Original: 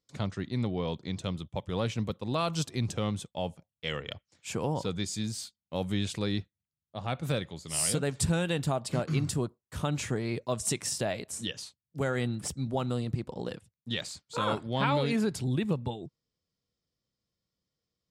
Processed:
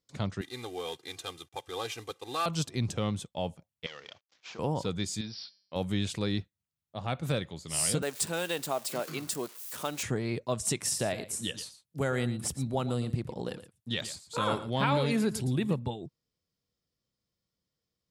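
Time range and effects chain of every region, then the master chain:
0.41–2.46 s: CVSD coder 64 kbps + high-pass 880 Hz 6 dB/octave + comb 2.5 ms, depth 91%
3.86–4.59 s: CVSD coder 32 kbps + high-pass 1 kHz 6 dB/octave + compression 3:1, threshold -42 dBFS
5.21–5.76 s: brick-wall FIR low-pass 5.8 kHz + bass shelf 280 Hz -11 dB + de-hum 197.5 Hz, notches 39
8.02–10.03 s: zero-crossing glitches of -33 dBFS + high-pass 360 Hz
10.80–15.79 s: peaking EQ 11 kHz +7 dB 0.58 oct + delay 115 ms -14 dB
whole clip: none

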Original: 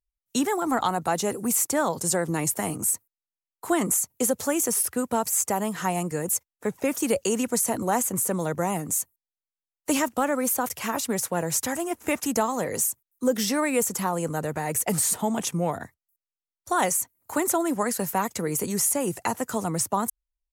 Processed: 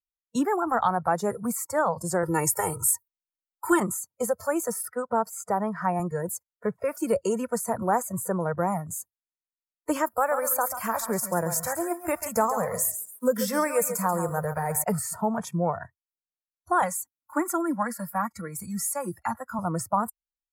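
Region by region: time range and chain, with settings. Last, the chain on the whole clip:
2.23–3.80 s: treble shelf 3.3 kHz +8 dB + comb 2.2 ms, depth 96%
4.89–6.00 s: high-pass 110 Hz + treble shelf 8.1 kHz -9 dB
10.06–14.84 s: treble shelf 7.9 kHz +12 dB + bit-crushed delay 137 ms, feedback 35%, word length 7-bit, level -8.5 dB
16.82–19.59 s: peaking EQ 530 Hz -8 dB 0.96 oct + comb 3.6 ms, depth 50% + three bands expanded up and down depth 40%
whole clip: spectral noise reduction 18 dB; resonant high shelf 1.9 kHz -8.5 dB, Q 1.5; band-stop 5.9 kHz, Q 14

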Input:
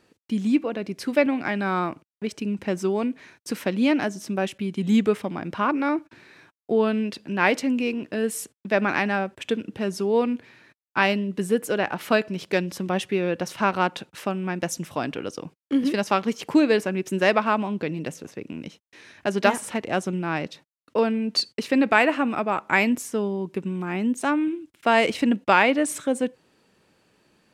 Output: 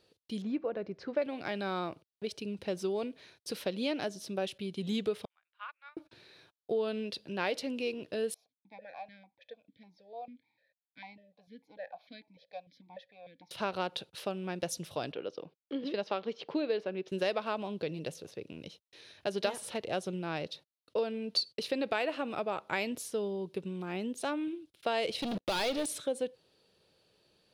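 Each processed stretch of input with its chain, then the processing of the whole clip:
0.42–1.22 s: steep low-pass 6.6 kHz + resonant high shelf 2.4 kHz -12 dB, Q 1.5
5.25–5.97 s: high-pass 1.3 kHz 24 dB/octave + distance through air 420 m + upward expansion 2.5:1, over -46 dBFS
8.34–13.51 s: static phaser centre 1.9 kHz, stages 8 + stepped vowel filter 6.7 Hz
15.12–17.12 s: high-pass 210 Hz + distance through air 230 m
25.22–25.86 s: waveshaping leveller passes 5 + level held to a coarse grid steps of 21 dB
whole clip: graphic EQ 250/500/1000/2000/4000/8000 Hz -9/+5/-5/-7/+10/-8 dB; compression 3:1, threshold -23 dBFS; peaking EQ 9.7 kHz +8.5 dB 0.23 oct; trim -6 dB

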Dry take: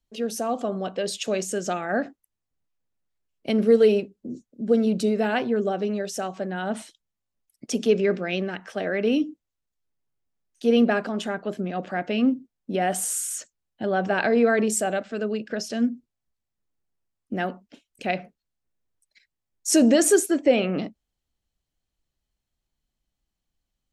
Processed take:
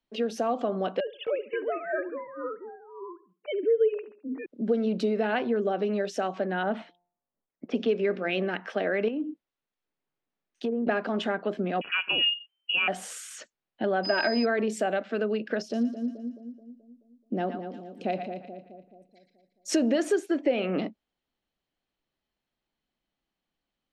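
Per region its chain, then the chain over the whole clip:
1.00–4.46 s: formants replaced by sine waves + ever faster or slower copies 266 ms, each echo -4 st, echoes 2, each echo -6 dB + feedback delay 70 ms, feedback 41%, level -19.5 dB
6.63–8.48 s: level-controlled noise filter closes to 1.1 kHz, open at -17 dBFS + de-hum 175.9 Hz, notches 6
9.08–10.87 s: low-pass that closes with the level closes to 450 Hz, closed at -15 dBFS + compression 5:1, threshold -27 dBFS
11.81–12.88 s: frequency inversion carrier 3.1 kHz + tape noise reduction on one side only decoder only
14.03–14.44 s: comb 3.2 ms, depth 66% + whistle 5 kHz -22 dBFS
15.62–19.69 s: peaking EQ 1.9 kHz -14.5 dB 1.9 oct + two-band feedback delay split 660 Hz, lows 215 ms, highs 115 ms, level -8 dB
whole clip: three-band isolator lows -16 dB, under 180 Hz, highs -22 dB, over 4.4 kHz; compression 3:1, threshold -28 dBFS; trim +3.5 dB

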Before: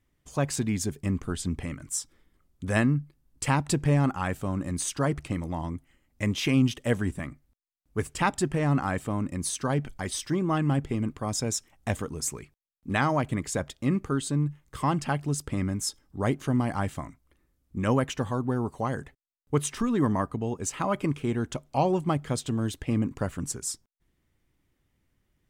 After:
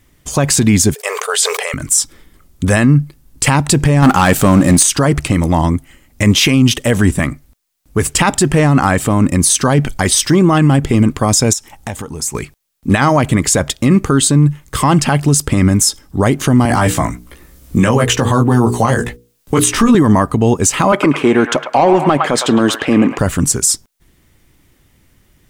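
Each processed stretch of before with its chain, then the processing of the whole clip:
0.94–1.74 s: brick-wall FIR high-pass 410 Hz + decay stretcher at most 37 dB/s
4.02–4.83 s: peaking EQ 75 Hz -8.5 dB 0.91 oct + waveshaping leveller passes 2
11.53–12.35 s: peaking EQ 860 Hz +10.5 dB 0.22 oct + compression 3:1, threshold -45 dBFS
16.65–19.95 s: hum notches 60/120/180/240/300/360/420/480 Hz + doubling 17 ms -3 dB + three bands compressed up and down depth 40%
20.92–23.19 s: high-pass 190 Hz + overdrive pedal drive 15 dB, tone 1.1 kHz, clips at -11.5 dBFS + feedback echo behind a band-pass 108 ms, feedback 36%, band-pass 1.5 kHz, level -7 dB
whole clip: treble shelf 3.9 kHz +6 dB; loudness maximiser +20.5 dB; trim -1 dB

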